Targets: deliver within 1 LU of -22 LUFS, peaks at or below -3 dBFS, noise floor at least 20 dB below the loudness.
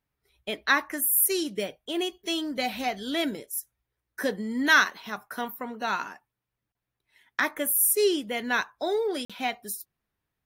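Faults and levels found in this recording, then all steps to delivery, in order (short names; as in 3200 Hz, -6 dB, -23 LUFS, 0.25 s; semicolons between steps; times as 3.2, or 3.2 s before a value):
dropouts 1; longest dropout 46 ms; loudness -26.5 LUFS; peak -8.0 dBFS; loudness target -22.0 LUFS
-> interpolate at 9.25, 46 ms; gain +4.5 dB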